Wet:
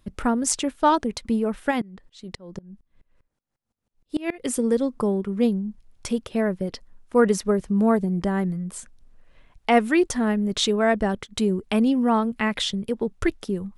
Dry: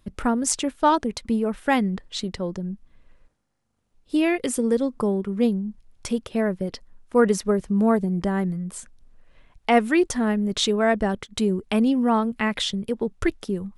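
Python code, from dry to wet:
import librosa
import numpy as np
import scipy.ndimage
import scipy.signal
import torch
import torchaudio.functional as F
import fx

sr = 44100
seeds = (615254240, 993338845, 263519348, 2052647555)

y = fx.tremolo_decay(x, sr, direction='swelling', hz=fx.line((1.7, 3.3), (4.44, 7.9)), depth_db=25, at=(1.7, 4.44), fade=0.02)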